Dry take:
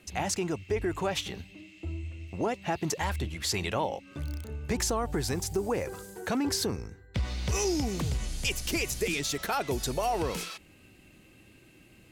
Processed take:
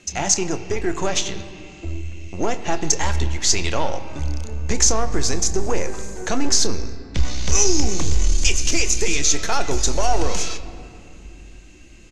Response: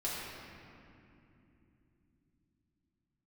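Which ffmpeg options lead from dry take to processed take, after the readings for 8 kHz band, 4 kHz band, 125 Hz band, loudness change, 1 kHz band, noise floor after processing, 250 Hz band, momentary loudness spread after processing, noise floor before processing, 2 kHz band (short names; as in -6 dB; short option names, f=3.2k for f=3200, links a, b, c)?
+15.5 dB, +10.5 dB, +7.5 dB, +10.0 dB, +6.5 dB, -42 dBFS, +5.5 dB, 14 LU, -57 dBFS, +7.5 dB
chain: -filter_complex "[0:a]aeval=exprs='0.15*(cos(1*acos(clip(val(0)/0.15,-1,1)))-cos(1*PI/2))+0.00944*(cos(6*acos(clip(val(0)/0.15,-1,1)))-cos(6*PI/2))':c=same,lowpass=f=6.5k:t=q:w=5.1,asubboost=boost=5.5:cutoff=50,asplit=2[a][b];[b]adelay=27,volume=-13.5dB[c];[a][c]amix=inputs=2:normalize=0,asplit=2[d][e];[1:a]atrim=start_sample=2205,lowpass=5k[f];[e][f]afir=irnorm=-1:irlink=0,volume=-13dB[g];[d][g]amix=inputs=2:normalize=0,volume=4.5dB"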